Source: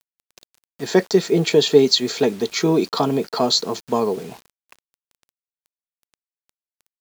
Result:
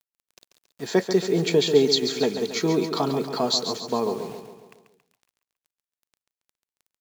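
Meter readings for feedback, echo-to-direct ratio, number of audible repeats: 52%, -7.5 dB, 5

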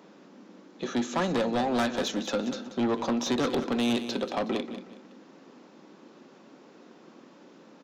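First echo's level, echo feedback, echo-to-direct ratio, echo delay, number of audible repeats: -11.5 dB, 30%, -11.0 dB, 185 ms, 3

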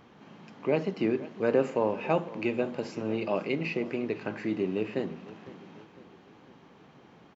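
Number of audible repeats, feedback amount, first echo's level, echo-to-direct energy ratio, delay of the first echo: 3, 51%, -18.0 dB, -16.5 dB, 504 ms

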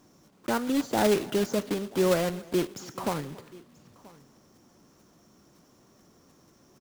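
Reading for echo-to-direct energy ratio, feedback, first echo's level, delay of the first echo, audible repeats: -19.5 dB, no regular repeats, -23.0 dB, 278 ms, 2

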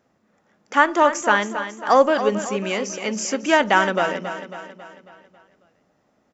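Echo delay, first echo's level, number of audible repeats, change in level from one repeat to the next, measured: 273 ms, -10.5 dB, 5, -6.0 dB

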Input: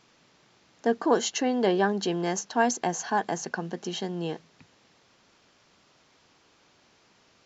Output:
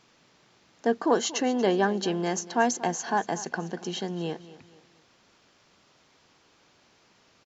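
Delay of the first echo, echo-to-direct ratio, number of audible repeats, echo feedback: 235 ms, -16.5 dB, 3, 37%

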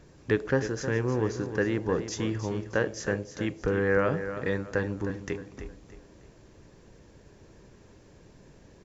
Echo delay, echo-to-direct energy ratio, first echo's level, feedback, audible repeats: 311 ms, -10.0 dB, -10.5 dB, 34%, 3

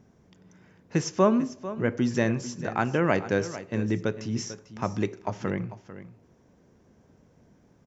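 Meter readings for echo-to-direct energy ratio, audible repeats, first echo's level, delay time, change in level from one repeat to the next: -14.0 dB, 1, -14.0 dB, 446 ms, no regular repeats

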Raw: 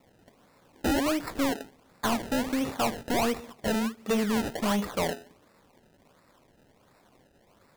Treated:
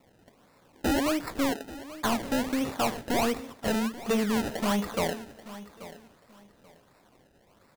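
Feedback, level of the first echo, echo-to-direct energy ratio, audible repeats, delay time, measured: 23%, -16.0 dB, -16.0 dB, 2, 834 ms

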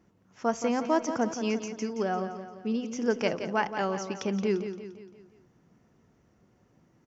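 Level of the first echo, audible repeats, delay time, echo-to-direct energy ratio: -9.5 dB, 5, 173 ms, -8.5 dB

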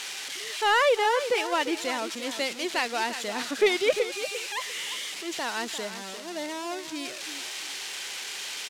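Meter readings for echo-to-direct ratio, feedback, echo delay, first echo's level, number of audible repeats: -10.5 dB, 24%, 348 ms, -11.0 dB, 2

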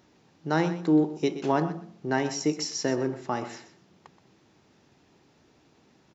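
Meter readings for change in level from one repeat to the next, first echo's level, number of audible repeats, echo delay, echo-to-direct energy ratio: -15.0 dB, -13.0 dB, 2, 125 ms, -13.0 dB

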